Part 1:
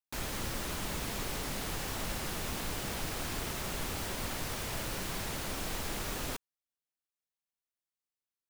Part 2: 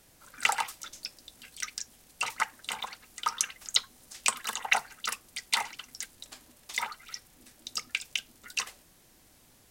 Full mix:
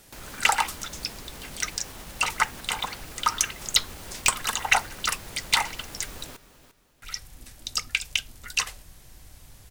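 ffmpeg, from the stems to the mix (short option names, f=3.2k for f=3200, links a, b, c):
-filter_complex "[0:a]alimiter=level_in=6.5dB:limit=-24dB:level=0:latency=1:release=197,volume=-6.5dB,volume=-1.5dB,asplit=2[a][b];[b]volume=-12.5dB[c];[1:a]aeval=exprs='0.708*sin(PI/2*2.51*val(0)/0.708)':c=same,asubboost=boost=6:cutoff=100,volume=-5dB,asplit=3[d][e][f];[d]atrim=end=6.27,asetpts=PTS-STARTPTS,afade=t=out:st=6.266:d=0.004:c=hsin[g];[e]atrim=start=6.27:end=7.02,asetpts=PTS-STARTPTS,volume=0[h];[f]atrim=start=7.02,asetpts=PTS-STARTPTS,afade=t=in:d=0.004:c=hsin[i];[g][h][i]concat=n=3:v=0:a=1[j];[c]aecho=0:1:348|696|1044|1392|1740:1|0.32|0.102|0.0328|0.0105[k];[a][j][k]amix=inputs=3:normalize=0"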